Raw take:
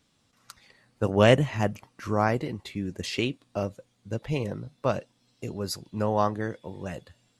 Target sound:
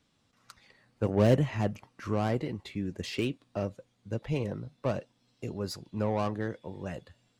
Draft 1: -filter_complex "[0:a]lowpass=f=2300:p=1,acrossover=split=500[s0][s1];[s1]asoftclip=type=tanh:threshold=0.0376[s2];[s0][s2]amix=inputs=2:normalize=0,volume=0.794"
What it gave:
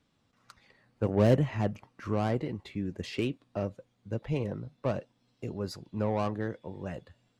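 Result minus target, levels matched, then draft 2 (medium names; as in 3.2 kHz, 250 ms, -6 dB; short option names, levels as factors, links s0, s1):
4 kHz band -2.5 dB
-filter_complex "[0:a]lowpass=f=5200:p=1,acrossover=split=500[s0][s1];[s1]asoftclip=type=tanh:threshold=0.0376[s2];[s0][s2]amix=inputs=2:normalize=0,volume=0.794"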